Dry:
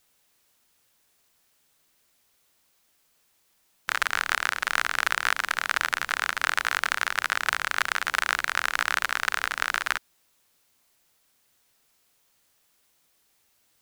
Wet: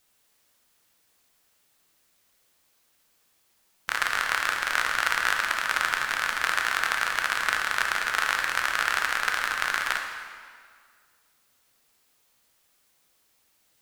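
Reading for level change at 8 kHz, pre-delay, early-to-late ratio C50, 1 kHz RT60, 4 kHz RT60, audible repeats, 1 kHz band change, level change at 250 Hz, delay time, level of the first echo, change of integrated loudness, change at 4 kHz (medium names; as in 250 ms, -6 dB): 0.0 dB, 9 ms, 4.0 dB, 1.9 s, 1.6 s, no echo, +1.0 dB, +0.5 dB, no echo, no echo, +0.5 dB, +0.5 dB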